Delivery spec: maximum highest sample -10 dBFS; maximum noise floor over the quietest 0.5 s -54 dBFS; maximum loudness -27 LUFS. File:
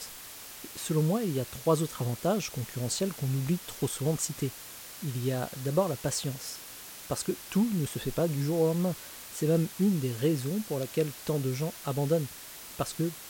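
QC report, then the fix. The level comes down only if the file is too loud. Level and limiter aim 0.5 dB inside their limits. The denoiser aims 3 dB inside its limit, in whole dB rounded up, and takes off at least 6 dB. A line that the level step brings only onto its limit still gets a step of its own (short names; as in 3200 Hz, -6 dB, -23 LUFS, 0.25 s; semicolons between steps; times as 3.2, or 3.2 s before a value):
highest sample -12.5 dBFS: OK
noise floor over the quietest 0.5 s -45 dBFS: fail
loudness -30.5 LUFS: OK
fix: denoiser 12 dB, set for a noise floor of -45 dBFS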